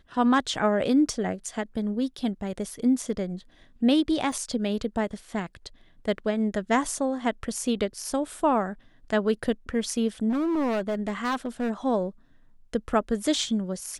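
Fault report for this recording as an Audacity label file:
4.320000	4.320000	drop-out 2.4 ms
10.290000	11.710000	clipping −23 dBFS

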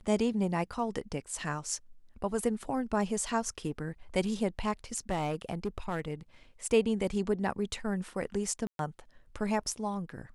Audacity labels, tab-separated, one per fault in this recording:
5.100000	6.140000	clipping −26.5 dBFS
8.670000	8.790000	drop-out 122 ms

